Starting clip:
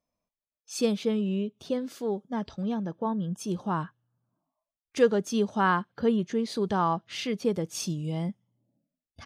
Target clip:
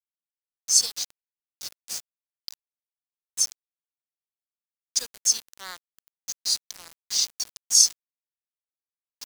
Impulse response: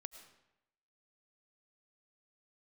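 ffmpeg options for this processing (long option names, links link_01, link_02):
-af "bandpass=frequency=5000:width_type=q:width=1.3:csg=0,aexciter=amount=11:drive=5.7:freq=4400,aeval=exprs='val(0)*gte(abs(val(0)),0.0282)':channel_layout=same,volume=1dB"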